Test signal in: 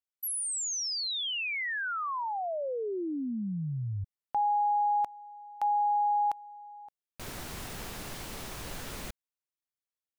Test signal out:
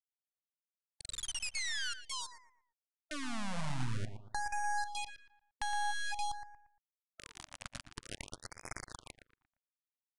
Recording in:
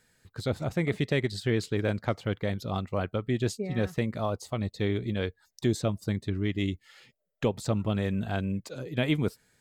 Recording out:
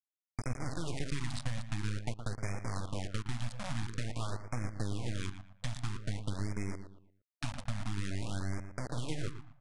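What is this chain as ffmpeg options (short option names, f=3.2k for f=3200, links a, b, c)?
-filter_complex "[0:a]equalizer=f=125:t=o:w=1:g=11,equalizer=f=500:t=o:w=1:g=-9,equalizer=f=8k:t=o:w=1:g=-10,flanger=delay=0.5:depth=2:regen=-43:speed=0.6:shape=sinusoidal,bandreject=f=45.54:t=h:w=4,bandreject=f=91.08:t=h:w=4,bandreject=f=136.62:t=h:w=4,bandreject=f=182.16:t=h:w=4,acrusher=bits=3:dc=4:mix=0:aa=0.000001,equalizer=f=190:w=0.89:g=-5.5,acompressor=threshold=-36dB:ratio=6:attack=42:release=153:knee=6:detection=rms,aresample=22050,aresample=44100,asplit=2[a][b];[b]adelay=116,lowpass=f=2.5k:p=1,volume=-9dB,asplit=2[c][d];[d]adelay=116,lowpass=f=2.5k:p=1,volume=0.36,asplit=2[e][f];[f]adelay=116,lowpass=f=2.5k:p=1,volume=0.36,asplit=2[g][h];[h]adelay=116,lowpass=f=2.5k:p=1,volume=0.36[i];[a][c][e][g][i]amix=inputs=5:normalize=0,afftfilt=real='re*(1-between(b*sr/1024,360*pow(3600/360,0.5+0.5*sin(2*PI*0.49*pts/sr))/1.41,360*pow(3600/360,0.5+0.5*sin(2*PI*0.49*pts/sr))*1.41))':imag='im*(1-between(b*sr/1024,360*pow(3600/360,0.5+0.5*sin(2*PI*0.49*pts/sr))/1.41,360*pow(3600/360,0.5+0.5*sin(2*PI*0.49*pts/sr))*1.41))':win_size=1024:overlap=0.75,volume=3dB"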